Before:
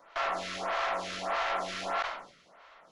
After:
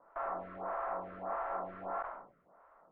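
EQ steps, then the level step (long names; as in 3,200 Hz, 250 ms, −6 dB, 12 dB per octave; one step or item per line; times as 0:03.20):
low-pass filter 1,300 Hz 24 dB per octave
−4.5 dB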